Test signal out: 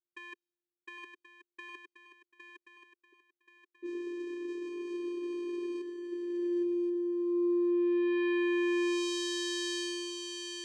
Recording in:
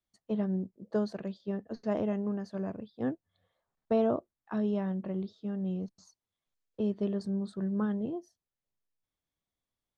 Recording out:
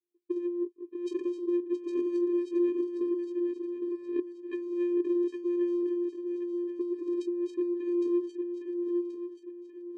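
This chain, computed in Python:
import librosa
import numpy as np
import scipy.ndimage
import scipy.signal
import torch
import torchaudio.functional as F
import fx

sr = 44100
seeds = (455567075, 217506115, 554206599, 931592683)

y = fx.env_lowpass(x, sr, base_hz=340.0, full_db=-31.5)
y = fx.over_compress(y, sr, threshold_db=-33.0, ratio=-0.5)
y = fx.vocoder(y, sr, bands=4, carrier='square', carrier_hz=349.0)
y = fx.fixed_phaser(y, sr, hz=370.0, stages=4)
y = fx.echo_swing(y, sr, ms=1080, ratio=3, feedback_pct=35, wet_db=-6.0)
y = y * 10.0 ** (5.0 / 20.0)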